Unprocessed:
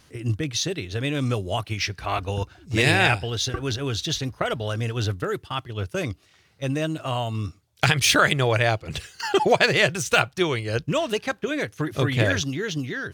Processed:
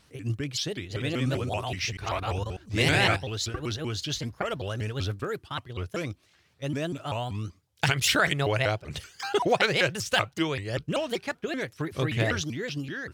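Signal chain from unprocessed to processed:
0:00.78–0:03.17: delay that plays each chunk backwards 119 ms, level −3 dB
pitch modulation by a square or saw wave saw up 5.2 Hz, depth 250 cents
level −5 dB

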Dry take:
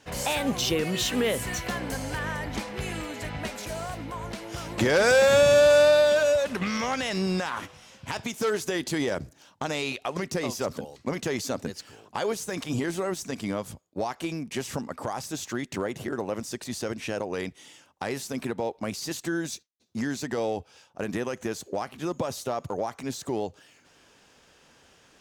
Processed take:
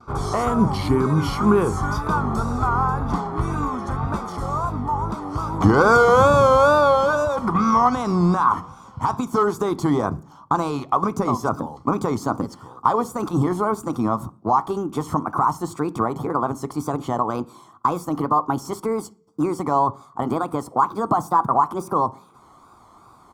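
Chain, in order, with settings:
gliding playback speed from 78% → 138%
comb filter 0.9 ms, depth 57%
tape wow and flutter 100 cents
high shelf with overshoot 1,600 Hz −12 dB, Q 3
on a send: convolution reverb RT60 0.50 s, pre-delay 3 ms, DRR 13 dB
on the sum: level +7 dB

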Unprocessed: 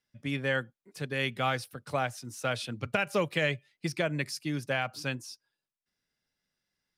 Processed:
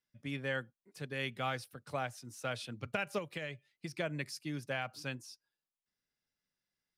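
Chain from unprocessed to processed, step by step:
0:03.18–0:03.98: downward compressor, threshold −31 dBFS, peak gain reduction 7.5 dB
level −7 dB

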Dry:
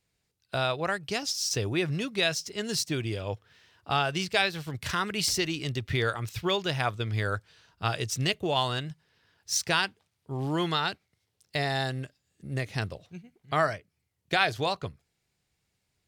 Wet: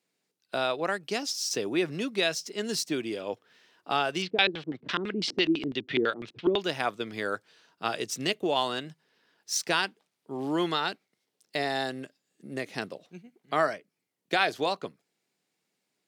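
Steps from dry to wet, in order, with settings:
high-pass filter 220 Hz 24 dB per octave
low-shelf EQ 490 Hz +6 dB
0:04.22–0:06.61: auto-filter low-pass square 6 Hz 320–3,400 Hz
level −1.5 dB

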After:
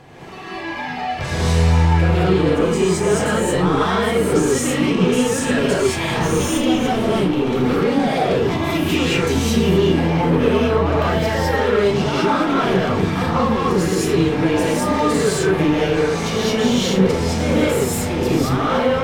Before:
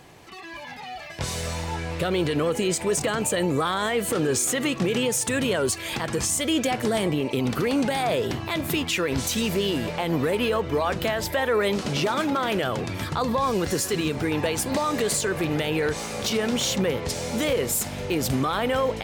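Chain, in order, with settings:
0:06.17–0:07.37: lower of the sound and its delayed copy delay 0.32 ms
low-pass filter 2,400 Hz 6 dB per octave
in parallel at +1 dB: speech leveller within 4 dB 0.5 s
on the sum: soft clipping −17 dBFS, distortion −13 dB
on a send: flutter between parallel walls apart 6.3 metres, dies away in 0.21 s
on the sum: reverb whose tail is shaped and stops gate 240 ms rising, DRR −7.5 dB
level −4.5 dB

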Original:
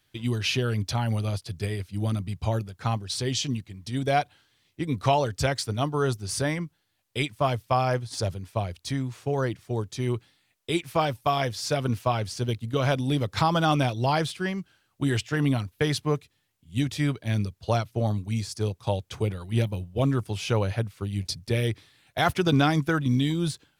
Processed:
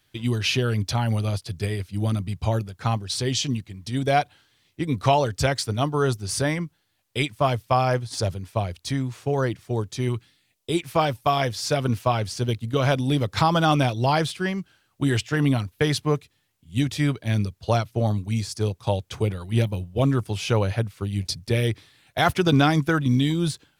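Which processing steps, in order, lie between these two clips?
0:10.08–0:10.76: parametric band 430 Hz → 2,200 Hz −8.5 dB 1.2 octaves
level +3 dB

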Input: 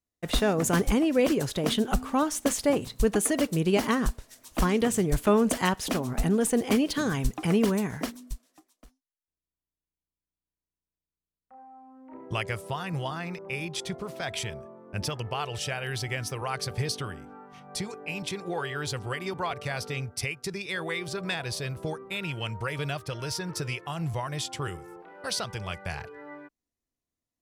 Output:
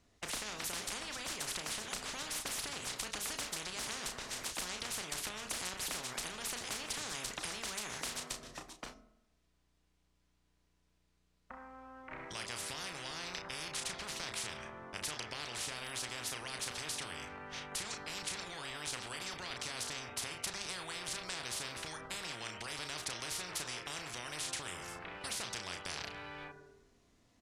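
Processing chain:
in parallel at −2 dB: output level in coarse steps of 23 dB
on the sum: brickwall limiter −15 dBFS, peak gain reduction 8 dB
downward compressor 2 to 1, threshold −36 dBFS, peak gain reduction 9.5 dB
high-frequency loss of the air 72 metres
double-tracking delay 33 ms −8 dB
on a send at −16.5 dB: convolution reverb RT60 0.85 s, pre-delay 4 ms
on the sum: every bin compressed towards the loudest bin 10 to 1
level +1.5 dB

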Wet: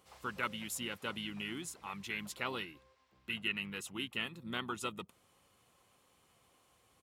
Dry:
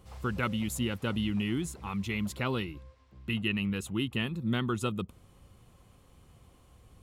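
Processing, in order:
high-pass filter 800 Hz 6 dB per octave
pitch-shifted copies added −5 semitones −12 dB
level −2.5 dB

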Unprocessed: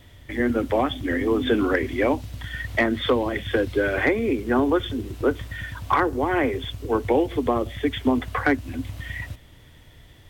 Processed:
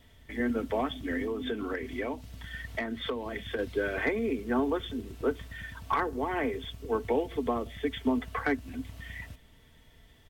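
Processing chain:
comb filter 4.5 ms, depth 45%
0:01.24–0:03.59: downward compressor 4 to 1, threshold −22 dBFS, peak gain reduction 7.5 dB
level −8.5 dB

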